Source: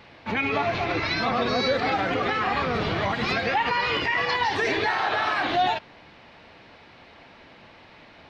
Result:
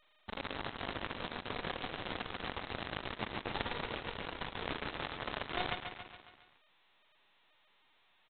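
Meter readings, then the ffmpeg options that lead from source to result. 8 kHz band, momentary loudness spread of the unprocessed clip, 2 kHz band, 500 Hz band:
can't be measured, 3 LU, −17.0 dB, −17.0 dB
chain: -af "highpass=frequency=51:width=0.5412,highpass=frequency=51:width=1.3066,alimiter=limit=-21.5dB:level=0:latency=1:release=130,acrusher=bits=3:mix=0:aa=0.000001,adynamicsmooth=sensitivity=2:basefreq=720,aecho=1:1:139|278|417|556|695|834:0.282|0.149|0.0792|0.042|0.0222|0.0118,volume=3.5dB" -ar 8000 -c:a adpcm_g726 -b:a 16k

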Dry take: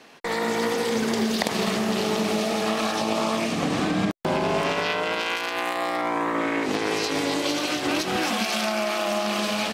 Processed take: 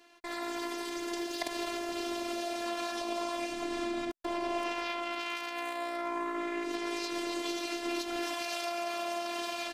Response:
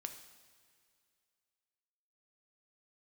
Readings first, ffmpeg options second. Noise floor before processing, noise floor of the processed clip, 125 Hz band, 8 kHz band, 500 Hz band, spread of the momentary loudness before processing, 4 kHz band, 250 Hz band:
−29 dBFS, −40 dBFS, below −25 dB, −10.5 dB, −10.5 dB, 2 LU, −10.5 dB, −11.0 dB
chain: -af "afftfilt=real='hypot(re,im)*cos(PI*b)':imag='0':win_size=512:overlap=0.75,volume=-7dB"

